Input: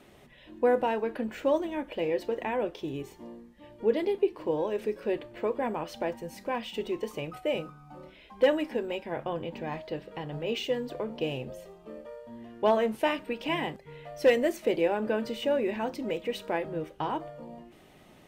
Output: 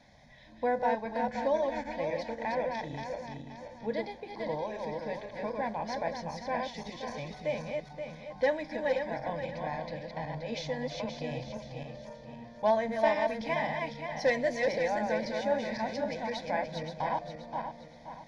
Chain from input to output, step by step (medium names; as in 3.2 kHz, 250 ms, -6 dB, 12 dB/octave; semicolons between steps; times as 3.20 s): backward echo that repeats 263 ms, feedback 59%, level -3 dB; peaking EQ 5.5 kHz +4.5 dB 0.68 oct; static phaser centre 1.9 kHz, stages 8; resampled via 22.05 kHz